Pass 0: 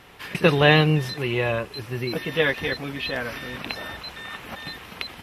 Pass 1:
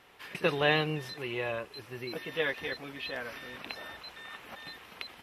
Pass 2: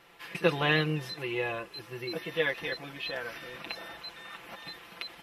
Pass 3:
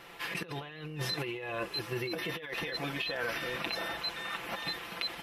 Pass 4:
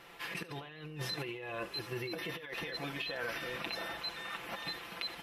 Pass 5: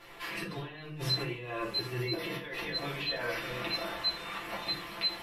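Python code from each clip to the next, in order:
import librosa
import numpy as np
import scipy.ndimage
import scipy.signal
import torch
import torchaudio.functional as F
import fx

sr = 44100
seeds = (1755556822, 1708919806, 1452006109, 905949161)

y1 = fx.bass_treble(x, sr, bass_db=-8, treble_db=-1)
y1 = y1 * librosa.db_to_amplitude(-9.0)
y2 = y1 + 0.65 * np.pad(y1, (int(5.9 * sr / 1000.0), 0))[:len(y1)]
y3 = fx.over_compress(y2, sr, threshold_db=-39.0, ratio=-1.0)
y3 = y3 * librosa.db_to_amplitude(2.0)
y4 = y3 + 10.0 ** (-18.0 / 20.0) * np.pad(y3, (int(74 * sr / 1000.0), 0))[:len(y3)]
y4 = y4 * librosa.db_to_amplitude(-4.0)
y5 = fx.room_shoebox(y4, sr, seeds[0], volume_m3=130.0, walls='furnished', distance_m=3.0)
y5 = y5 * librosa.db_to_amplitude(-3.0)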